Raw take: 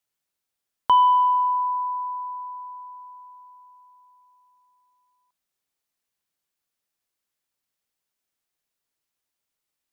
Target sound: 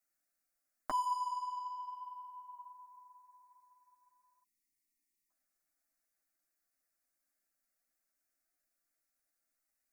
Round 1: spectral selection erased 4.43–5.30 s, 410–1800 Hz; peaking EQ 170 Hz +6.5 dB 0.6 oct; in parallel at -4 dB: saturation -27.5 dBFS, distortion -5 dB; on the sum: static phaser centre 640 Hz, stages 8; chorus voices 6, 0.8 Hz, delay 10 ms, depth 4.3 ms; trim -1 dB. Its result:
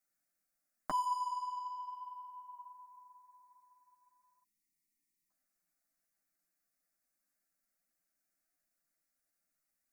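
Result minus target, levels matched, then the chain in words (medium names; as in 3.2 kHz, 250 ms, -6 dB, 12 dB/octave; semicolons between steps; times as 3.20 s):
125 Hz band +7.0 dB
spectral selection erased 4.43–5.30 s, 410–1800 Hz; peaking EQ 170 Hz -3.5 dB 0.6 oct; in parallel at -4 dB: saturation -27.5 dBFS, distortion -5 dB; on the sum: static phaser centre 640 Hz, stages 8; chorus voices 6, 0.8 Hz, delay 10 ms, depth 4.3 ms; trim -1 dB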